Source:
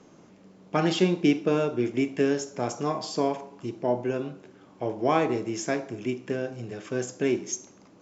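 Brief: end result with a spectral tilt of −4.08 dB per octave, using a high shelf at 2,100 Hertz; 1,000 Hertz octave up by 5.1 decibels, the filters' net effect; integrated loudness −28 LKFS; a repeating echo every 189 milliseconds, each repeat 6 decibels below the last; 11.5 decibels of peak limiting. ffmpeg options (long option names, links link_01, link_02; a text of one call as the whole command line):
ffmpeg -i in.wav -af "equalizer=frequency=1000:width_type=o:gain=5.5,highshelf=frequency=2100:gain=6,alimiter=limit=-17dB:level=0:latency=1,aecho=1:1:189|378|567|756|945|1134:0.501|0.251|0.125|0.0626|0.0313|0.0157" out.wav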